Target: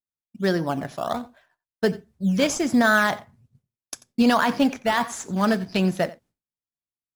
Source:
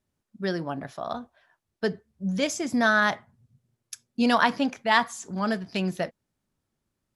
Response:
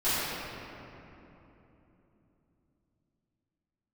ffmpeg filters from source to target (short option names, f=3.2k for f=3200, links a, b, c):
-filter_complex "[0:a]agate=range=-33dB:threshold=-55dB:ratio=3:detection=peak,alimiter=limit=-15.5dB:level=0:latency=1:release=36,asplit=2[a][b];[b]acrusher=samples=15:mix=1:aa=0.000001:lfo=1:lforange=15:lforate=1.3,volume=-10.5dB[c];[a][c]amix=inputs=2:normalize=0,aecho=1:1:89:0.106,volume=4dB"